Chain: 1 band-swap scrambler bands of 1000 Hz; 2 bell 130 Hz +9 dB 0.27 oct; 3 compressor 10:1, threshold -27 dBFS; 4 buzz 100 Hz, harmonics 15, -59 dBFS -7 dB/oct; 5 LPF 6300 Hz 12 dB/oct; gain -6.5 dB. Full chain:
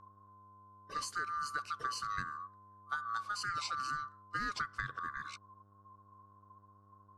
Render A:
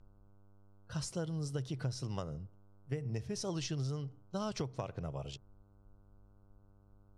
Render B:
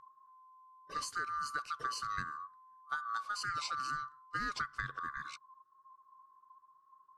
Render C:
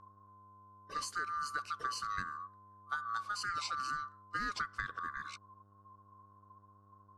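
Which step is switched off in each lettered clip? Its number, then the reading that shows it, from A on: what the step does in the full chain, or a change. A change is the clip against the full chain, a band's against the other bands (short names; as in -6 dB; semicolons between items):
1, 2 kHz band -23.0 dB; 4, momentary loudness spread change -1 LU; 2, 125 Hz band -2.5 dB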